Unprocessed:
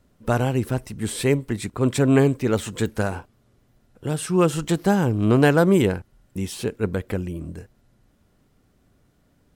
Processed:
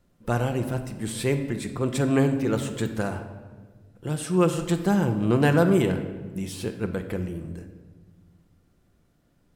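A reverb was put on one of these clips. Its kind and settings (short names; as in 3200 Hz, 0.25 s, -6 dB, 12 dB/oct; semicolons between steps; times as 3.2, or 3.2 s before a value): shoebox room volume 1300 m³, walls mixed, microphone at 0.82 m; gain -4.5 dB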